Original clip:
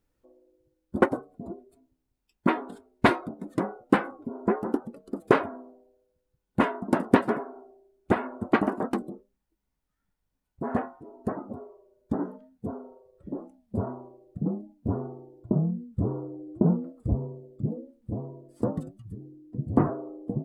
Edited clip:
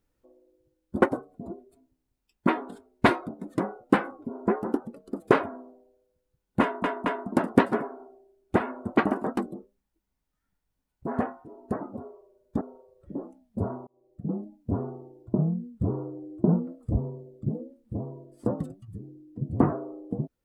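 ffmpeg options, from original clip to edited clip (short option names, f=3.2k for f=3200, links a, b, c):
-filter_complex "[0:a]asplit=5[a][b][c][d][e];[a]atrim=end=6.842[f];[b]atrim=start=6.618:end=6.842[g];[c]atrim=start=6.618:end=12.172[h];[d]atrim=start=12.778:end=14.04,asetpts=PTS-STARTPTS,afade=t=out:st=1.258:d=0.004:c=hsin[i];[e]atrim=start=14.04,asetpts=PTS-STARTPTS,afade=t=in:d=0.55[j];[f][g]acrossfade=d=0.004:c1=hsin:c2=hsin[k];[k][h]acrossfade=d=0.004:c1=hsin:c2=hsin[l];[i][j]concat=n=2:v=0:a=1[m];[l][m]acrossfade=d=0.004:c1=hsin:c2=hsin"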